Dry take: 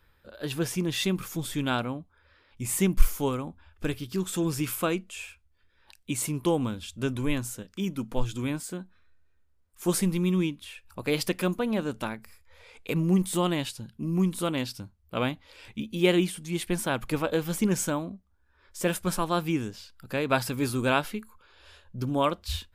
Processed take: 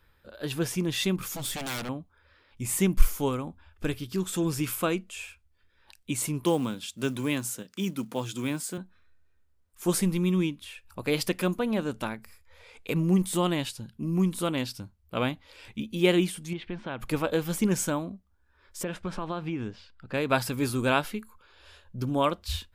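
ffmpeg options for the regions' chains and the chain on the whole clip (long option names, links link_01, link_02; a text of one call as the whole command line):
ffmpeg -i in.wav -filter_complex "[0:a]asettb=1/sr,asplit=3[link_01][link_02][link_03];[link_01]atrim=end=1.164[link_04];[link_02]atrim=start=1.16:end=1.89,asetpts=PTS-STARTPTS,afade=type=in:duration=0.004:curve=qsin,afade=type=out:start_time=0.726:duration=0.004:curve=qsin,aeval=exprs='0.0316*(abs(mod(val(0)/0.0316+3,4)-2)-1)':channel_layout=same,adynamicequalizer=threshold=0.00282:dfrequency=2100:dqfactor=0.7:tfrequency=2100:tqfactor=0.7:attack=5:release=100:ratio=0.375:range=2.5:mode=boostabove:tftype=highshelf[link_05];[link_03]atrim=start=1.886[link_06];[link_04][link_05]acrossfade=duration=0.004:curve1=hsin:curve2=qsin[link_07];[link_07][link_06]acrossfade=duration=0.004:curve1=qsin:curve2=hsin,asettb=1/sr,asplit=3[link_08][link_09][link_10];[link_08]atrim=end=6.454[link_11];[link_09]atrim=start=6.45:end=8.78,asetpts=PTS-STARTPTS,afade=type=in:duration=0.004:curve=qsin,afade=type=out:start_time=2.326:duration=0.004:curve=qsin,highpass=frequency=130:width=0.5412,highpass=frequency=130:width=1.3066,highshelf=frequency=2700:gain=4,acrusher=bits=7:mode=log:mix=0:aa=0.000001[link_12];[link_10]atrim=start=8.776[link_13];[link_11][link_12]acrossfade=duration=0.004:curve1=hsin:curve2=qsin[link_14];[link_14][link_13]acrossfade=duration=0.004:curve1=qsin:curve2=hsin,asettb=1/sr,asplit=3[link_15][link_16][link_17];[link_15]atrim=end=16.534[link_18];[link_16]atrim=start=16.53:end=17,asetpts=PTS-STARTPTS,afade=type=in:duration=0.004:curve=qsin,afade=type=out:start_time=0.466:duration=0.004:curve=qsin,acompressor=threshold=-35dB:ratio=2:attack=3.2:release=140:knee=1:detection=peak,lowpass=frequency=3500:width=0.5412,lowpass=frequency=3500:width=1.3066[link_19];[link_17]atrim=start=16.996[link_20];[link_18][link_19]acrossfade=duration=0.004:curve1=hsin:curve2=qsin[link_21];[link_21][link_20]acrossfade=duration=0.004:curve1=qsin:curve2=hsin,asettb=1/sr,asplit=3[link_22][link_23][link_24];[link_22]atrim=end=18.834[link_25];[link_23]atrim=start=18.83:end=20.14,asetpts=PTS-STARTPTS,afade=type=in:duration=0.004:curve=qsin,afade=type=out:start_time=1.306:duration=0.004:curve=qsin,lowpass=3200,acompressor=threshold=-27dB:ratio=6:attack=3.2:release=140:knee=1:detection=peak[link_26];[link_24]atrim=start=20.136[link_27];[link_25][link_26]acrossfade=duration=0.004:curve1=hsin:curve2=qsin[link_28];[link_28][link_27]acrossfade=duration=0.004:curve1=qsin:curve2=hsin" out.wav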